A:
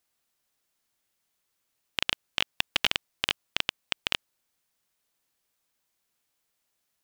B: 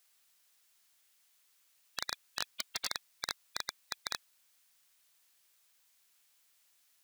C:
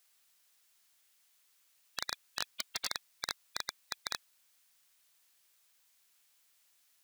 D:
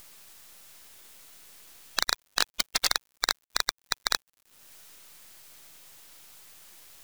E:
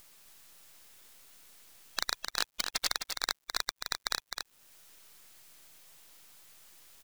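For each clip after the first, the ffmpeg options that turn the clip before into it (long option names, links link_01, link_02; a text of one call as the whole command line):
ffmpeg -i in.wav -af "afftfilt=real='re*lt(hypot(re,im),0.0708)':imag='im*lt(hypot(re,im),0.0708)':win_size=1024:overlap=0.75,tiltshelf=frequency=800:gain=-7.5,alimiter=limit=-16.5dB:level=0:latency=1:release=13,volume=1dB" out.wav
ffmpeg -i in.wav -af anull out.wav
ffmpeg -i in.wav -filter_complex "[0:a]asplit=2[link_01][link_02];[link_02]acompressor=mode=upward:threshold=-45dB:ratio=2.5,volume=2dB[link_03];[link_01][link_03]amix=inputs=2:normalize=0,acrusher=bits=6:dc=4:mix=0:aa=0.000001,volume=4.5dB" out.wav
ffmpeg -i in.wav -af "aecho=1:1:259:0.501,volume=-6.5dB" out.wav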